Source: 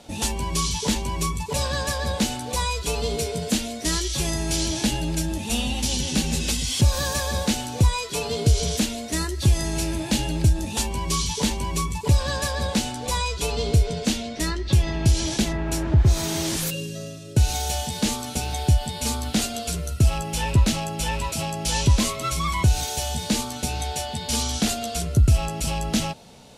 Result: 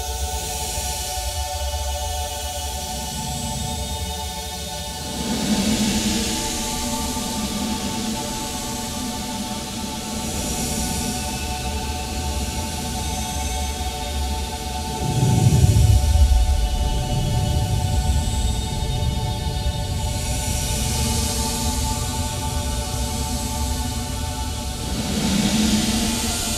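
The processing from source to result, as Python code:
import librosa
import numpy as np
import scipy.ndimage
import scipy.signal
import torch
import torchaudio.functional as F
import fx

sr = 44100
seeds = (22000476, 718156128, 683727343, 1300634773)

y = fx.paulstretch(x, sr, seeds[0], factor=15.0, window_s=0.1, from_s=17.66)
y = fx.echo_diffused(y, sr, ms=1982, feedback_pct=72, wet_db=-5.5)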